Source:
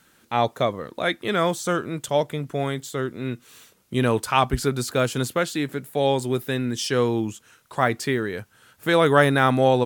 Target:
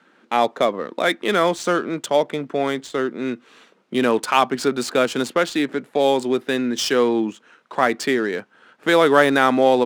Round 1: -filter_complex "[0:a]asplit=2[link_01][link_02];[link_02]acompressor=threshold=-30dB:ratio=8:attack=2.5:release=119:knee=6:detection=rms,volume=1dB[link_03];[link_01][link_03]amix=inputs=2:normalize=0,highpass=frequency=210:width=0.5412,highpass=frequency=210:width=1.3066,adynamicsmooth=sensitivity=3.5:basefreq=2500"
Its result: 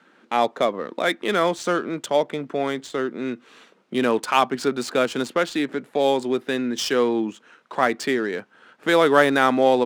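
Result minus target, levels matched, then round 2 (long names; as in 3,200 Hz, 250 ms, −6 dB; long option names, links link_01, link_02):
downward compressor: peak gain reduction +9 dB
-filter_complex "[0:a]asplit=2[link_01][link_02];[link_02]acompressor=threshold=-20dB:ratio=8:attack=2.5:release=119:knee=6:detection=rms,volume=1dB[link_03];[link_01][link_03]amix=inputs=2:normalize=0,highpass=frequency=210:width=0.5412,highpass=frequency=210:width=1.3066,adynamicsmooth=sensitivity=3.5:basefreq=2500"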